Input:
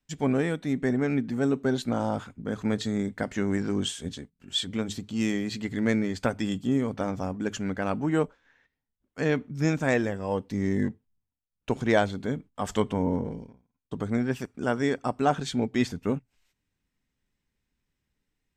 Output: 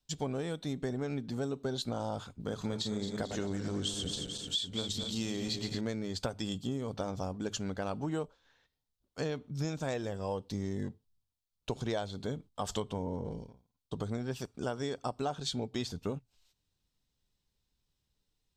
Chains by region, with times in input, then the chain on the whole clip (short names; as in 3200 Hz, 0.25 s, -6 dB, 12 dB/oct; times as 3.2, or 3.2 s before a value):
2.4–5.81 regenerating reverse delay 0.11 s, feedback 71%, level -8 dB + mismatched tape noise reduction encoder only
whole clip: graphic EQ 250/2000/4000 Hz -7/-11/+8 dB; compressor, threshold -31 dBFS